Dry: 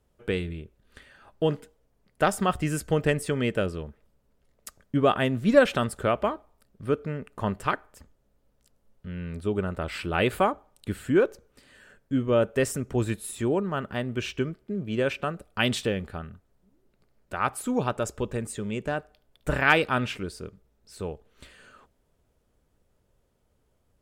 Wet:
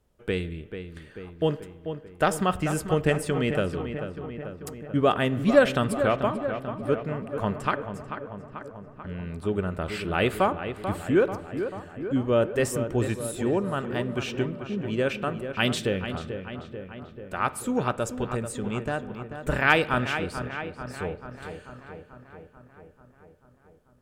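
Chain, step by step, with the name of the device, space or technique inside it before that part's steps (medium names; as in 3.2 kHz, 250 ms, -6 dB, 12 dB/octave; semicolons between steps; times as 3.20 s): 7.60–9.21 s: low-pass 11 kHz 12 dB/octave; dub delay into a spring reverb (filtered feedback delay 439 ms, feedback 67%, low-pass 2.8 kHz, level -9 dB; spring tank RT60 1.3 s, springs 43/54 ms, chirp 50 ms, DRR 18 dB)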